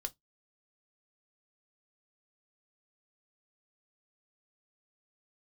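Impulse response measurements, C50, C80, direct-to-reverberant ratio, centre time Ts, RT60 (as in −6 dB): 28.5 dB, 42.5 dB, 7.0 dB, 3 ms, 0.15 s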